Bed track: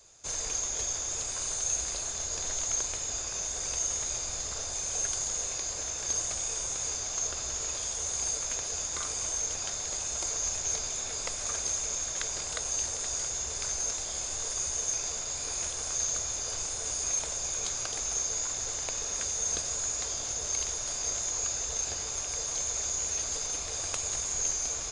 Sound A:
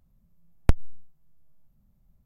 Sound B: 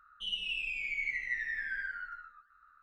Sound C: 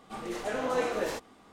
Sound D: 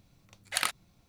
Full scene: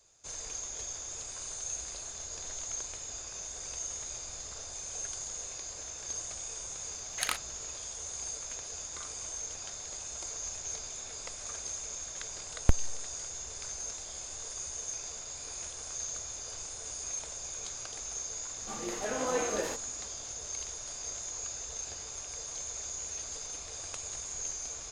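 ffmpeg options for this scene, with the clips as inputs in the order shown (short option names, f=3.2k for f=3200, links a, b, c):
-filter_complex "[0:a]volume=-7.5dB[a];[4:a]atrim=end=1.08,asetpts=PTS-STARTPTS,volume=-3.5dB,afade=t=in:d=0.004:c=hsin,afade=t=out:st=1.076:d=0.004:c=hsin,adelay=293706S[b];[1:a]atrim=end=2.25,asetpts=PTS-STARTPTS,volume=-4.5dB,afade=t=in:d=0.004:c=hsin,afade=t=out:st=2.246:d=0.004:c=hsin,adelay=12000[c];[3:a]atrim=end=1.52,asetpts=PTS-STARTPTS,volume=-2.5dB,afade=t=in:d=0.004:c=hsin,afade=t=out:st=1.516:d=0.004:c=hsin,adelay=18570[d];[a][b][c][d]amix=inputs=4:normalize=0"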